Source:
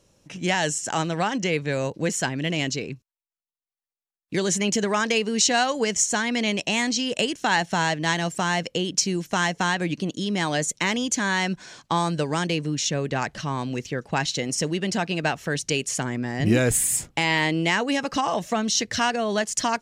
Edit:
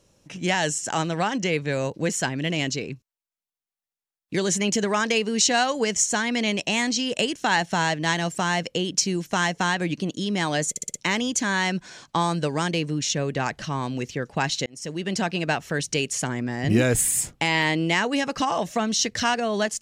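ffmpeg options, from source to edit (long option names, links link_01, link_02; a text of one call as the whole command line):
ffmpeg -i in.wav -filter_complex "[0:a]asplit=6[link_01][link_02][link_03][link_04][link_05][link_06];[link_01]atrim=end=10.762[link_07];[link_02]atrim=start=10.698:end=10.762[link_08];[link_03]atrim=start=10.698:end=10.762[link_09];[link_04]atrim=start=10.698:end=10.762[link_10];[link_05]atrim=start=10.698:end=14.42,asetpts=PTS-STARTPTS,afade=type=out:start_time=3.718:duration=0.004:curve=hsin[link_11];[link_06]atrim=start=14.42,asetpts=PTS-STARTPTS,afade=type=in:duration=0.5[link_12];[link_07][link_08]acrossfade=duration=0.004:curve1=hsin:curve2=hsin[link_13];[link_13][link_09]acrossfade=duration=0.004:curve1=hsin:curve2=hsin[link_14];[link_14][link_10]acrossfade=duration=0.004:curve1=hsin:curve2=hsin[link_15];[link_11][link_12]concat=n=2:v=0:a=1[link_16];[link_15][link_16]acrossfade=duration=0.004:curve1=hsin:curve2=hsin" out.wav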